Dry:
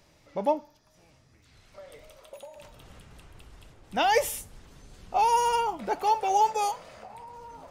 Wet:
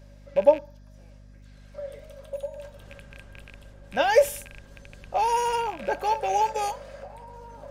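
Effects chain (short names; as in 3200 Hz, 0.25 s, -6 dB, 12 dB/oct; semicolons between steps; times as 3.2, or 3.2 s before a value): rattling part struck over -46 dBFS, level -29 dBFS; small resonant body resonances 560/1600 Hz, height 17 dB, ringing for 85 ms; hum 50 Hz, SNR 21 dB; gain -1.5 dB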